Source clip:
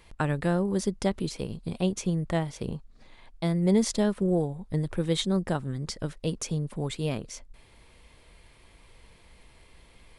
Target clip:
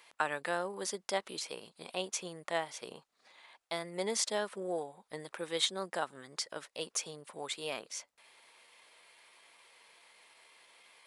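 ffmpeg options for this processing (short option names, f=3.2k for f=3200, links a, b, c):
-af "highpass=730,atempo=0.92"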